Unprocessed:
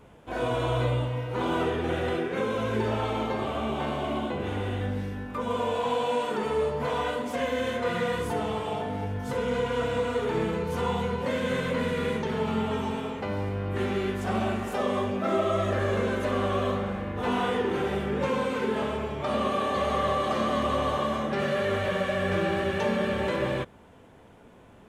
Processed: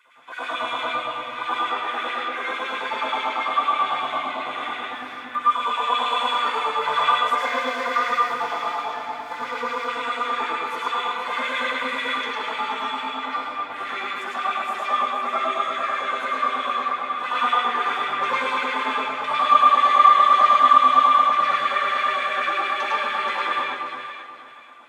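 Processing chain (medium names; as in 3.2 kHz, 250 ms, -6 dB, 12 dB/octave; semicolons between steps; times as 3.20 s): 7.36–9.88 s: median filter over 15 samples; resonant low shelf 160 Hz +11 dB, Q 1.5; gain riding within 4 dB 2 s; small resonant body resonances 260/1200/3400 Hz, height 14 dB, ringing for 45 ms; LFO high-pass sine 9.1 Hz 720–2400 Hz; echo whose repeats swap between lows and highs 239 ms, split 1.2 kHz, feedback 53%, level -3 dB; reverberation RT60 0.40 s, pre-delay 99 ms, DRR -4 dB; trim -5 dB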